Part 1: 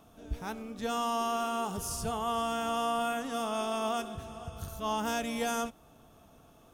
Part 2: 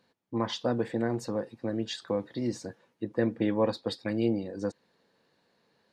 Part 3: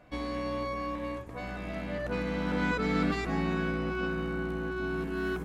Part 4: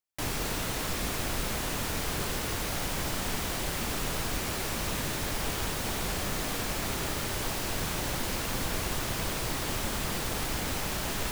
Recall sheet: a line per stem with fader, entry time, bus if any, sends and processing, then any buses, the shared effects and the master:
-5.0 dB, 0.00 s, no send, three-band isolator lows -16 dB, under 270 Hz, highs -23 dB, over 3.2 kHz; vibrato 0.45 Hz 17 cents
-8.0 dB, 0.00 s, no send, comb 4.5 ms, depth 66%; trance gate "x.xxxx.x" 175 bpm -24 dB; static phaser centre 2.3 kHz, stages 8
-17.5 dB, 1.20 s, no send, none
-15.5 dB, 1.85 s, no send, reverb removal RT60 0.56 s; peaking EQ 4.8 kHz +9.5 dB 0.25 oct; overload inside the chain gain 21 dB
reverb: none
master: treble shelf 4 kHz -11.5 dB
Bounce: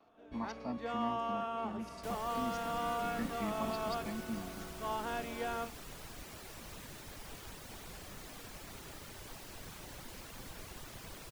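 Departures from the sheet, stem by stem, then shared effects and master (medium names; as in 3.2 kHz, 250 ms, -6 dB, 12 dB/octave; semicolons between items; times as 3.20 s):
stem 3: entry 1.20 s -> 0.20 s; stem 4: missing peaking EQ 4.8 kHz +9.5 dB 0.25 oct; master: missing treble shelf 4 kHz -11.5 dB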